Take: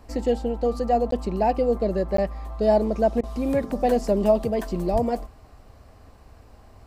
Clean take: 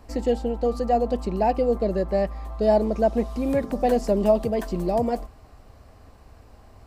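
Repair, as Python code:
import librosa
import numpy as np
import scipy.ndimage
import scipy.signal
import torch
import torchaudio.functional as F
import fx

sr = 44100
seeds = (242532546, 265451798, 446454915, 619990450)

y = fx.highpass(x, sr, hz=140.0, slope=24, at=(4.92, 5.04), fade=0.02)
y = fx.fix_interpolate(y, sr, at_s=(1.11, 2.17), length_ms=13.0)
y = fx.fix_interpolate(y, sr, at_s=(3.21,), length_ms=22.0)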